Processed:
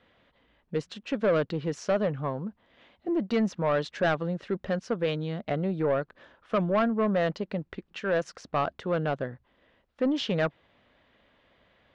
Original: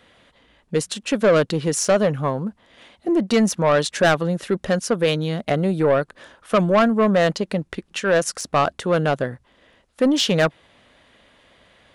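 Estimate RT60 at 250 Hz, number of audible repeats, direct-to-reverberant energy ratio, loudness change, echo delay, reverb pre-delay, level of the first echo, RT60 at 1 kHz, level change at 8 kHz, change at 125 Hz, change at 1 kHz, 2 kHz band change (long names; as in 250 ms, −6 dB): no reverb audible, no echo audible, no reverb audible, −9.0 dB, no echo audible, no reverb audible, no echo audible, no reverb audible, below −20 dB, −8.0 dB, −9.0 dB, −9.5 dB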